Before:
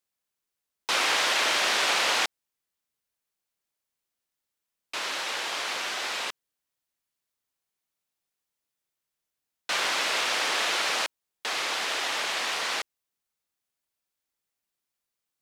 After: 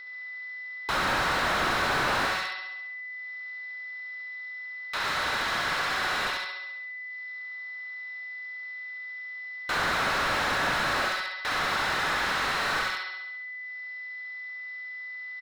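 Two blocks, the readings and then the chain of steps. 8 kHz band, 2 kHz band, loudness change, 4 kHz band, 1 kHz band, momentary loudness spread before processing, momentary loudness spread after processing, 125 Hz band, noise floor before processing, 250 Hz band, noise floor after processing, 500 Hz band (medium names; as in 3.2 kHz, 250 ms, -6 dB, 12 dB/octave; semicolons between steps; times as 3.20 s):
-8.0 dB, +2.5 dB, -3.5 dB, -4.5 dB, +3.5 dB, 11 LU, 12 LU, no reading, under -85 dBFS, +7.0 dB, -39 dBFS, +1.5 dB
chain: high-pass 440 Hz 12 dB/octave; waveshaping leveller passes 1; upward compressor, threshold -32 dBFS; rippled Chebyshev low-pass 5.5 kHz, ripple 9 dB; flutter echo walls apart 11.6 m, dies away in 0.94 s; whistle 2 kHz -44 dBFS; feedback delay 73 ms, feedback 50%, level -9 dB; slew-rate limiter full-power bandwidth 65 Hz; trim +3.5 dB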